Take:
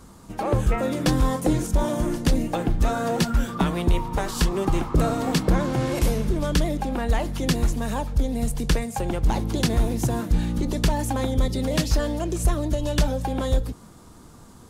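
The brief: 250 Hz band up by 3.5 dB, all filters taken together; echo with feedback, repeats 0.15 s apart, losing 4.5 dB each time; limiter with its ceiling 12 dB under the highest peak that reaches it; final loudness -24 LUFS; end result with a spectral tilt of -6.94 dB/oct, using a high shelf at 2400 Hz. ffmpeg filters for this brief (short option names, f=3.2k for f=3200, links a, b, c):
-af "equalizer=f=250:t=o:g=4.5,highshelf=f=2.4k:g=-4.5,alimiter=limit=-20.5dB:level=0:latency=1,aecho=1:1:150|300|450|600|750|900|1050|1200|1350:0.596|0.357|0.214|0.129|0.0772|0.0463|0.0278|0.0167|0.01,volume=3dB"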